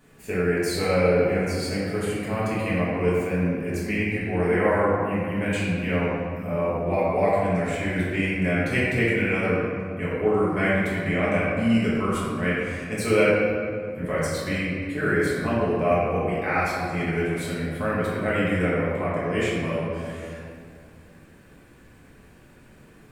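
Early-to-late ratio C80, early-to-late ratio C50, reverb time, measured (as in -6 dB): -0.5 dB, -2.5 dB, 2.3 s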